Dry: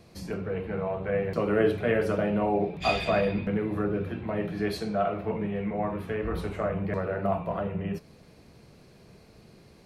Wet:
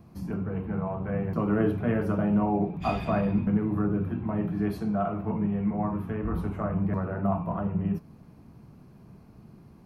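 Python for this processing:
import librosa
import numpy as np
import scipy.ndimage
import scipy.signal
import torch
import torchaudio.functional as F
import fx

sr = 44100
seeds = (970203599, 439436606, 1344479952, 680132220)

y = fx.graphic_eq_10(x, sr, hz=(125, 250, 500, 1000, 2000, 4000, 8000), db=(3, 5, -10, 4, -8, -12, -11))
y = y * 10.0 ** (1.5 / 20.0)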